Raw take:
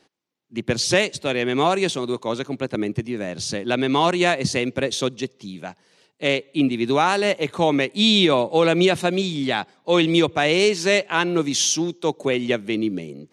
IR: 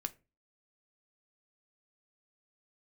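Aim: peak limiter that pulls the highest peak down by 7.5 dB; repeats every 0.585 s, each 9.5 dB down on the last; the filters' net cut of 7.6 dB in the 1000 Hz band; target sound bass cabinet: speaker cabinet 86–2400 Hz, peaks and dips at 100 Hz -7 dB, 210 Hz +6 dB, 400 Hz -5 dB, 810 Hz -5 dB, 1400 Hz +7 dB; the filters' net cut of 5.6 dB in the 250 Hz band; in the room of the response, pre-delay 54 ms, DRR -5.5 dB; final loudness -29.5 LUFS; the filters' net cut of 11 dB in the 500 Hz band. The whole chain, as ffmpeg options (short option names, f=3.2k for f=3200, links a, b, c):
-filter_complex "[0:a]equalizer=f=250:t=o:g=-6.5,equalizer=f=500:t=o:g=-7.5,equalizer=f=1k:t=o:g=-7,alimiter=limit=-14.5dB:level=0:latency=1,aecho=1:1:585|1170|1755|2340:0.335|0.111|0.0365|0.012,asplit=2[a][b];[1:a]atrim=start_sample=2205,adelay=54[c];[b][c]afir=irnorm=-1:irlink=0,volume=6.5dB[d];[a][d]amix=inputs=2:normalize=0,highpass=f=86:w=0.5412,highpass=f=86:w=1.3066,equalizer=f=100:t=q:w=4:g=-7,equalizer=f=210:t=q:w=4:g=6,equalizer=f=400:t=q:w=4:g=-5,equalizer=f=810:t=q:w=4:g=-5,equalizer=f=1.4k:t=q:w=4:g=7,lowpass=f=2.4k:w=0.5412,lowpass=f=2.4k:w=1.3066,volume=-7dB"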